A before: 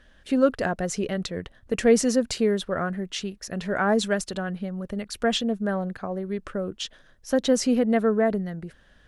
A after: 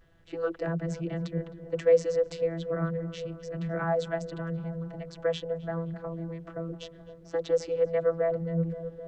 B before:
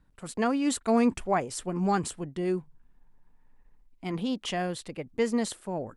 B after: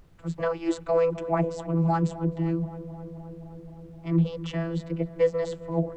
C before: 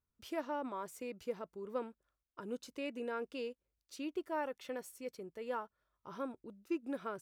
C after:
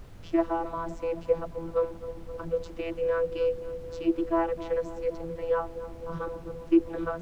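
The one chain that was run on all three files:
channel vocoder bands 32, saw 166 Hz
background noise brown −56 dBFS
on a send: feedback echo with a low-pass in the loop 261 ms, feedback 83%, low-pass 1,500 Hz, level −14.5 dB
on the sum: normalise the peak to −12 dBFS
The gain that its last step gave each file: −5.0, +3.0, +13.0 decibels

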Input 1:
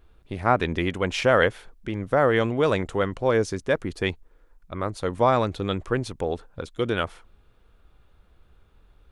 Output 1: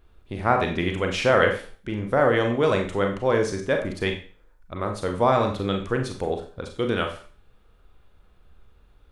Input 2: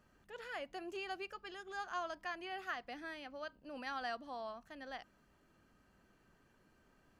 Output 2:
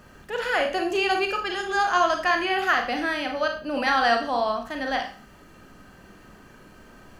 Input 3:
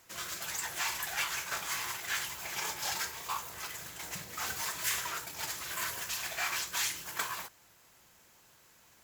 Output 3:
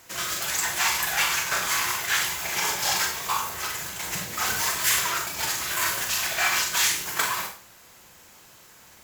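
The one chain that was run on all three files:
four-comb reverb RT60 0.4 s, combs from 30 ms, DRR 3.5 dB
loudness normalisation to −24 LKFS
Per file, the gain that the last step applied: −1.0, +19.5, +9.0 decibels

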